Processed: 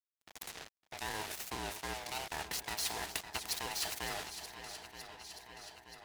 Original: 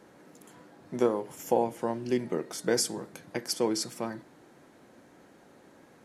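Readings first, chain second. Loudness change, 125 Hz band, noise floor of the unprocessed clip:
-9.0 dB, -9.5 dB, -58 dBFS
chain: split-band scrambler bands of 500 Hz; high-pass 47 Hz 24 dB/octave; expander -46 dBFS; graphic EQ 125/250/500/1000/2000/4000/8000 Hz -5/-8/+5/-8/+8/+9/-6 dB; reverse; compression 10:1, threshold -44 dBFS, peak gain reduction 22.5 dB; reverse; vibrato 2.8 Hz 82 cents; crossover distortion -57.5 dBFS; on a send: shuffle delay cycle 928 ms, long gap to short 1.5:1, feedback 45%, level -19.5 dB; on the sum: spectrum-flattening compressor 2:1; trim +13 dB

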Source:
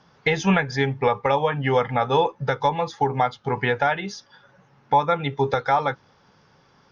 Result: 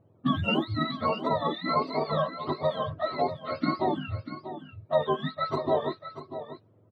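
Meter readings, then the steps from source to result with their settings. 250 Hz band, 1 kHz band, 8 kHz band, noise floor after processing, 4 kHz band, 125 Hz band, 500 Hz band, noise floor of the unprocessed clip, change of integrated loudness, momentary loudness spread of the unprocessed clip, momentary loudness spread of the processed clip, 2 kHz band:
-3.0 dB, -8.0 dB, no reading, -61 dBFS, -3.0 dB, -7.5 dB, -5.5 dB, -58 dBFS, -6.5 dB, 4 LU, 13 LU, -11.5 dB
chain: spectrum inverted on a logarithmic axis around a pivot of 730 Hz; level-controlled noise filter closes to 910 Hz, open at -18 dBFS; treble shelf 5 kHz -6.5 dB; delay 641 ms -11.5 dB; trim -4.5 dB

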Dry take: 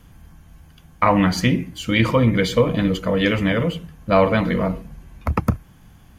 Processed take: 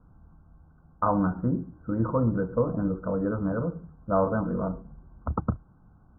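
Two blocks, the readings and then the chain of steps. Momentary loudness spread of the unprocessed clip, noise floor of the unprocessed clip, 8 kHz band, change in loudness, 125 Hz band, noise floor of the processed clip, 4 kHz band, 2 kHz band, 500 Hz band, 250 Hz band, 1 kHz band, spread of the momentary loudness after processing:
9 LU, -49 dBFS, under -40 dB, -8.5 dB, -8.0 dB, -57 dBFS, under -40 dB, -18.5 dB, -8.5 dB, -7.5 dB, -8.0 dB, 9 LU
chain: Chebyshev low-pass 1.5 kHz, order 8; trim -7.5 dB

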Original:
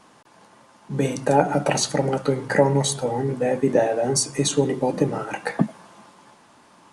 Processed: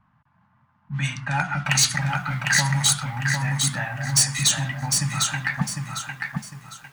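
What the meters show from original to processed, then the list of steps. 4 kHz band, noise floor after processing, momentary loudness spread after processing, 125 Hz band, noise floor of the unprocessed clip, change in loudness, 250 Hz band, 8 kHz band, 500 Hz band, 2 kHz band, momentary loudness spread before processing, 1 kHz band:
+7.0 dB, -64 dBFS, 12 LU, +2.5 dB, -54 dBFS, 0.0 dB, -7.5 dB, +6.5 dB, -22.5 dB, +7.5 dB, 7 LU, -4.0 dB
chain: Chebyshev band-stop 110–1600 Hz, order 2; level-controlled noise filter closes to 520 Hz, open at -23 dBFS; bass shelf 120 Hz -6.5 dB; overload inside the chain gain 20.5 dB; bit-crushed delay 753 ms, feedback 35%, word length 10-bit, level -4 dB; trim +8 dB

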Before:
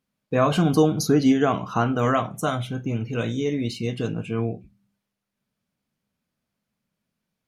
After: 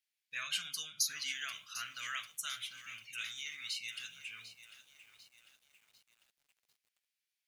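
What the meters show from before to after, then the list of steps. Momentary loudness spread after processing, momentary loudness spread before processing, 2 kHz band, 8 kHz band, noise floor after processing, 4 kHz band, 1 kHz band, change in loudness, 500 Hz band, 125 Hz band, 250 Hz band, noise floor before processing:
21 LU, 9 LU, -7.5 dB, -2.0 dB, under -85 dBFS, -2.5 dB, -24.0 dB, -16.0 dB, under -40 dB, under -40 dB, under -40 dB, -83 dBFS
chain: inverse Chebyshev high-pass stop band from 950 Hz, stop band 40 dB; bit-crushed delay 747 ms, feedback 55%, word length 9-bit, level -13 dB; trim -2.5 dB

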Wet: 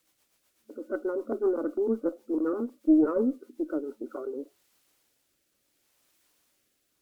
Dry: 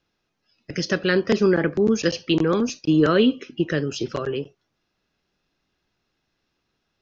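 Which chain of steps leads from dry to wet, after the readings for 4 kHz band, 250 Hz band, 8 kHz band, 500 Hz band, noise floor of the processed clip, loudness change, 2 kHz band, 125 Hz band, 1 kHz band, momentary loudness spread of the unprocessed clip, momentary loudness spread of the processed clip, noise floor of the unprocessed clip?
under -35 dB, -6.0 dB, no reading, -7.5 dB, -75 dBFS, -7.5 dB, -21.0 dB, under -25 dB, -11.5 dB, 11 LU, 15 LU, -76 dBFS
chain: drifting ripple filter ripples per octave 0.94, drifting +2.5 Hz, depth 8 dB; FFT band-pass 220–1500 Hz; word length cut 10-bit, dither triangular; small resonant body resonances 310/560 Hz, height 6 dB, ringing for 85 ms; rotary cabinet horn 8 Hz, later 0.7 Hz, at 3.53 s; Chebyshev shaper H 2 -19 dB, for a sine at -5 dBFS; trim -8 dB

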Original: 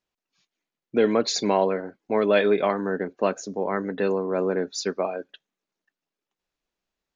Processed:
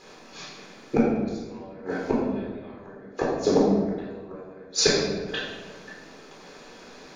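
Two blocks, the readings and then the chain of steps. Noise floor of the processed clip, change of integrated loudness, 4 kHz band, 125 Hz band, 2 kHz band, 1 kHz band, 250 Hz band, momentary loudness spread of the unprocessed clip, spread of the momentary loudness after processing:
-48 dBFS, -1.0 dB, +3.5 dB, +3.0 dB, -2.0 dB, -5.5 dB, +1.5 dB, 9 LU, 23 LU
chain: spectral levelling over time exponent 0.6; inverted gate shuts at -14 dBFS, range -37 dB; simulated room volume 880 m³, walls mixed, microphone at 4 m; trim +3 dB

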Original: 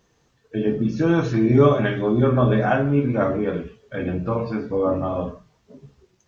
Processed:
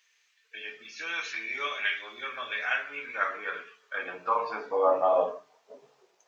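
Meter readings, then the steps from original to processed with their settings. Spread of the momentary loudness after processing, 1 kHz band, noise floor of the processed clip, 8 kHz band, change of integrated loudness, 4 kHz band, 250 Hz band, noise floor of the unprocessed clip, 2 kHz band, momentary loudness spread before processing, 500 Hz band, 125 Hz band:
16 LU, -2.5 dB, -69 dBFS, no reading, -9.5 dB, +2.5 dB, -29.5 dB, -65 dBFS, +1.0 dB, 12 LU, -9.0 dB, under -40 dB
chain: de-hum 69.58 Hz, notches 6; small resonant body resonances 450/2400 Hz, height 6 dB; high-pass sweep 2.2 kHz -> 680 Hz, 2.59–5.20 s; trim -1.5 dB

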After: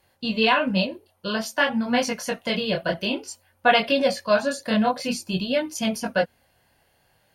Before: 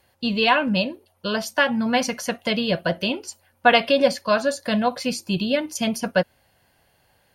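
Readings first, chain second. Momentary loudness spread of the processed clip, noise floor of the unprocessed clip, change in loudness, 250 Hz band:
9 LU, -64 dBFS, -1.5 dB, -1.5 dB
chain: chorus voices 2, 0.52 Hz, delay 23 ms, depth 4.6 ms; trim +1.5 dB

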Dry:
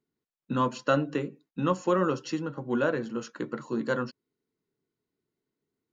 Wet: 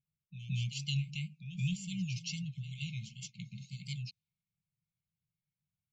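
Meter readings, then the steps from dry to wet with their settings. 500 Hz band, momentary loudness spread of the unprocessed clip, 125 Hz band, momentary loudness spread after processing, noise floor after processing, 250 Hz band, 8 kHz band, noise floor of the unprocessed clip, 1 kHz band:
under -40 dB, 10 LU, +0.5 dB, 11 LU, under -85 dBFS, -12.0 dB, no reading, under -85 dBFS, under -40 dB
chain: wow and flutter 120 cents; level-controlled noise filter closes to 1.8 kHz, open at -26.5 dBFS; brick-wall FIR band-stop 190–2100 Hz; reverse echo 171 ms -12 dB; trim +1 dB

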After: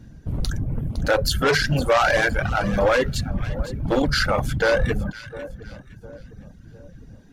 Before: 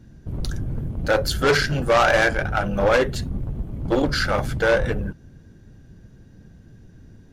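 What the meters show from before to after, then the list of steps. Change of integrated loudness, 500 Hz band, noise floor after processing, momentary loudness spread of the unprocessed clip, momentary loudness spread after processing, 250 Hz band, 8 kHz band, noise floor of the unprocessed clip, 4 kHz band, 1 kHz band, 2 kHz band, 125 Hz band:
-0.5 dB, -1.0 dB, -47 dBFS, 13 LU, 16 LU, +0.5 dB, +1.5 dB, -49 dBFS, +1.0 dB, -0.5 dB, -0.5 dB, +1.0 dB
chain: filtered feedback delay 706 ms, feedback 53%, low-pass 820 Hz, level -17 dB; peak limiter -14 dBFS, peak gain reduction 5 dB; feedback echo behind a high-pass 509 ms, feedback 34%, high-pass 1.6 kHz, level -12.5 dB; reverb removal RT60 0.67 s; peaking EQ 370 Hz -7 dB 0.21 oct; trim +3.5 dB

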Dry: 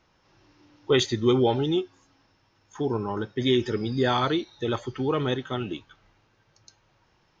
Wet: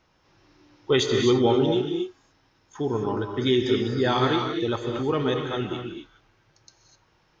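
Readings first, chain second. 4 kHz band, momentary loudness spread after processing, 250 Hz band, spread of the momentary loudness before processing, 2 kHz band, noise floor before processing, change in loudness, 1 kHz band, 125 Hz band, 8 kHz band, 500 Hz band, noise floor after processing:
+1.5 dB, 11 LU, +2.0 dB, 10 LU, +2.0 dB, -66 dBFS, +1.5 dB, +1.5 dB, +1.0 dB, no reading, +2.5 dB, -65 dBFS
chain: gated-style reverb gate 280 ms rising, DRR 3 dB

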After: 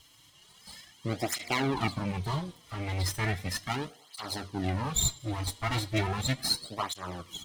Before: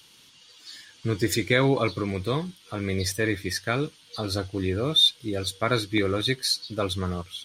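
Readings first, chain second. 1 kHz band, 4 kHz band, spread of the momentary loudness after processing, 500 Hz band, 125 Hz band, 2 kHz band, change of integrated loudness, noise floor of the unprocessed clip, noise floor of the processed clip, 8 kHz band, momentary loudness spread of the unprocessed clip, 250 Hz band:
-1.0 dB, -9.5 dB, 12 LU, -11.0 dB, -3.5 dB, -6.0 dB, -6.0 dB, -55 dBFS, -59 dBFS, +1.5 dB, 12 LU, -7.0 dB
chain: comb filter that takes the minimum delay 0.97 ms; bass shelf 78 Hz +5 dB; de-hum 237.5 Hz, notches 36; on a send: tape echo 101 ms, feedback 57%, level -22.5 dB; on the sum: cancelling through-zero flanger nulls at 0.36 Hz, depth 5.7 ms

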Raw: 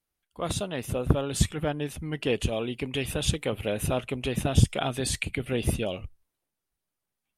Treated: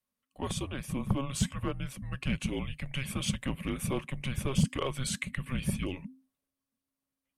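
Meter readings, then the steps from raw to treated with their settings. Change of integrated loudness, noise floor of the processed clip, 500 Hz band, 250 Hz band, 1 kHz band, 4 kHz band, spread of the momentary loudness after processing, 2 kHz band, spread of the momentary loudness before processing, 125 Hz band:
-5.5 dB, under -85 dBFS, -10.5 dB, -3.0 dB, -6.0 dB, -5.5 dB, 7 LU, -4.5 dB, 7 LU, -5.0 dB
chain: frequency shift -270 Hz; small resonant body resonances 570/1100 Hz, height 8 dB; in parallel at -3.5 dB: hard clipper -19.5 dBFS, distortion -10 dB; on the sum: trim -9 dB

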